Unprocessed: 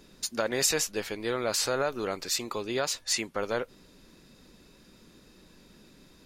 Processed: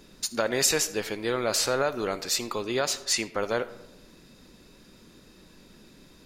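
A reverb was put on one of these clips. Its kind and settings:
comb and all-pass reverb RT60 0.96 s, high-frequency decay 0.45×, pre-delay 20 ms, DRR 15 dB
level +2.5 dB

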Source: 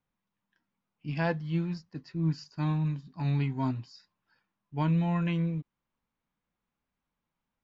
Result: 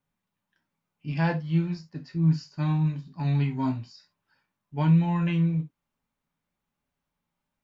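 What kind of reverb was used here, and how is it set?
reverb whose tail is shaped and stops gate 100 ms falling, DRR 4 dB
level +1 dB

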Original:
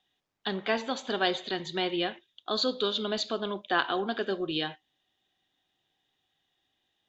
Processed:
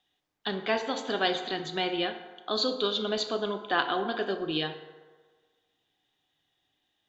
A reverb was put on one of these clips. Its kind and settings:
feedback delay network reverb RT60 1.5 s, low-frequency decay 0.75×, high-frequency decay 0.5×, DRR 7 dB

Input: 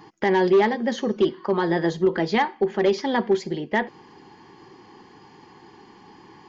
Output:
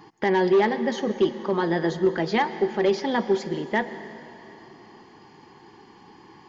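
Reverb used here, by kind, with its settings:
dense smooth reverb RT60 3.1 s, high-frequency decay 1×, pre-delay 105 ms, DRR 12 dB
level −1.5 dB

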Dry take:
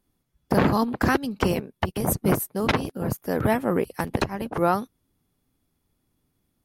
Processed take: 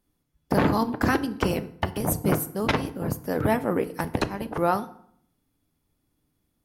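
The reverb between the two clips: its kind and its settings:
feedback delay network reverb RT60 0.64 s, low-frequency decay 1.25×, high-frequency decay 0.75×, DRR 11 dB
level −1.5 dB

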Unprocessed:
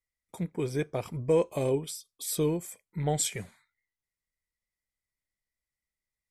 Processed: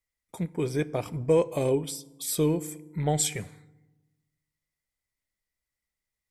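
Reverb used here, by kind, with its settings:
feedback delay network reverb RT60 1.1 s, low-frequency decay 1.35×, high-frequency decay 0.55×, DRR 18 dB
level +2.5 dB

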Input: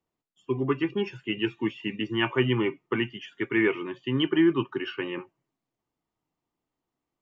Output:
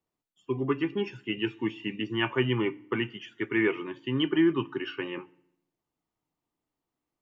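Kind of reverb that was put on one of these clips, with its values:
feedback delay network reverb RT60 0.73 s, low-frequency decay 1.3×, high-frequency decay 0.95×, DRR 19 dB
level −2 dB

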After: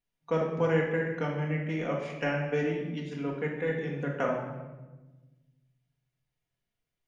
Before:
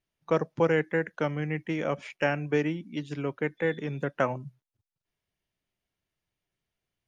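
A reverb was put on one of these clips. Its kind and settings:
rectangular room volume 730 cubic metres, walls mixed, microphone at 1.8 metres
level −6 dB

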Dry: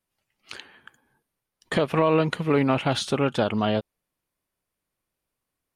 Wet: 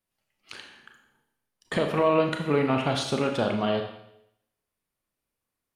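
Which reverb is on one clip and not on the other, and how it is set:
four-comb reverb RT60 0.78 s, combs from 27 ms, DRR 3.5 dB
level −3.5 dB

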